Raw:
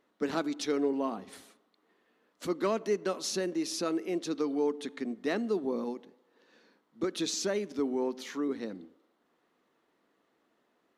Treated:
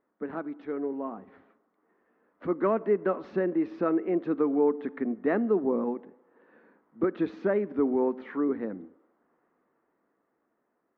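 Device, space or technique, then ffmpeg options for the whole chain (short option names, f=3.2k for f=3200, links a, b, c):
action camera in a waterproof case: -af "lowpass=f=1.8k:w=0.5412,lowpass=f=1.8k:w=1.3066,dynaudnorm=f=330:g=13:m=9dB,volume=-3.5dB" -ar 44100 -c:a aac -b:a 96k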